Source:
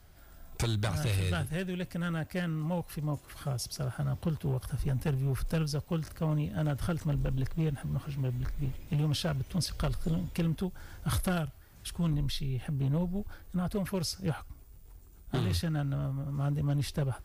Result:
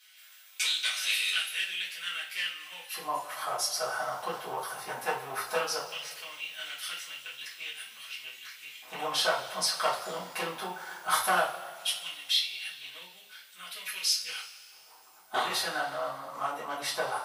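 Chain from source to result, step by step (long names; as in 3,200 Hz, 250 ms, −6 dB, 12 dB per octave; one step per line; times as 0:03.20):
auto-filter high-pass square 0.17 Hz 850–2,700 Hz
high-shelf EQ 9,300 Hz −3.5 dB
coupled-rooms reverb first 0.31 s, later 2 s, from −18 dB, DRR −8.5 dB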